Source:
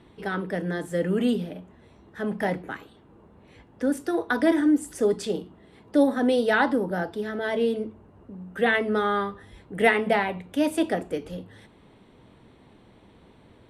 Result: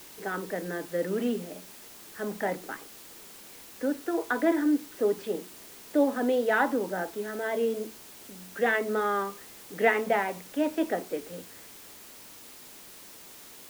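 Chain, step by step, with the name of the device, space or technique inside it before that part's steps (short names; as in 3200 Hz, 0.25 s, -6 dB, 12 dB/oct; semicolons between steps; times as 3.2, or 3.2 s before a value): wax cylinder (BPF 260–2400 Hz; wow and flutter 24 cents; white noise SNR 18 dB); gain -2.5 dB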